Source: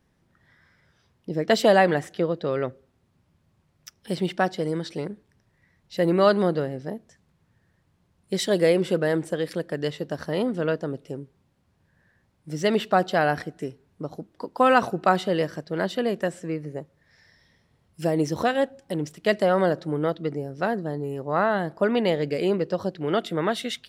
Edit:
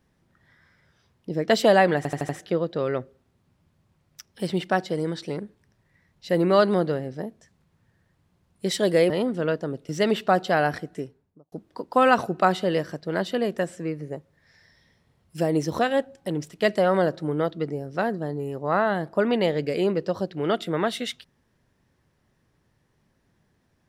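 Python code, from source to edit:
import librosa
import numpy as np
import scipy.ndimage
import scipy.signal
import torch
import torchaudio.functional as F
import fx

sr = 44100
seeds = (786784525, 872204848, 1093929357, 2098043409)

y = fx.studio_fade_out(x, sr, start_s=13.55, length_s=0.61)
y = fx.edit(y, sr, fx.stutter(start_s=1.97, slice_s=0.08, count=5),
    fx.cut(start_s=8.78, length_s=1.52),
    fx.cut(start_s=11.09, length_s=1.44), tone=tone)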